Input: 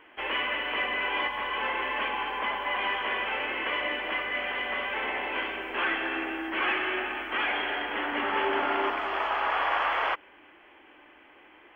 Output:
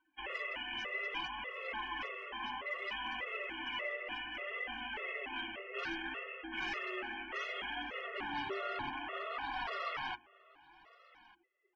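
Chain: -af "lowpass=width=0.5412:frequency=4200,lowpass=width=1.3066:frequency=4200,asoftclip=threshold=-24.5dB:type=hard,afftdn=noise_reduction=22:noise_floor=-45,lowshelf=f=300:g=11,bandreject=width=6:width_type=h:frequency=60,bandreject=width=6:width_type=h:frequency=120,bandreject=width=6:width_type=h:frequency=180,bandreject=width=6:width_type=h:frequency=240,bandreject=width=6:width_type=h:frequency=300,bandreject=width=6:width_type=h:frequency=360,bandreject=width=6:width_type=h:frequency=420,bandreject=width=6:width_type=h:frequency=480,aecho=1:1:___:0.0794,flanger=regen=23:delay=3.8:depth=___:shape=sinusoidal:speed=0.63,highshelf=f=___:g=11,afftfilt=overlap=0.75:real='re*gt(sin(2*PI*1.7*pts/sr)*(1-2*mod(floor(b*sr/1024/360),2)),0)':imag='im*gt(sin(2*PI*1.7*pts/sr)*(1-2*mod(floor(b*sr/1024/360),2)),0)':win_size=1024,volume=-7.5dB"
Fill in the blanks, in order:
1197, 4.8, 2700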